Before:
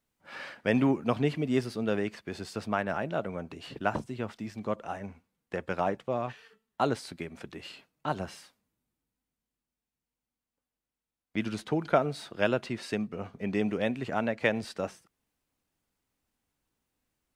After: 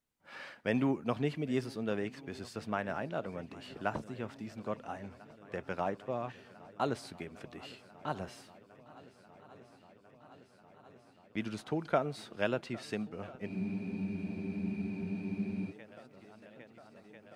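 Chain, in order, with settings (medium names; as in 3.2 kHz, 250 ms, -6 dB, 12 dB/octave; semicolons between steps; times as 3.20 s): shuffle delay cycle 1345 ms, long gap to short 1.5:1, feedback 75%, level -21.5 dB; spectral freeze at 13.49 s, 2.22 s; trim -5.5 dB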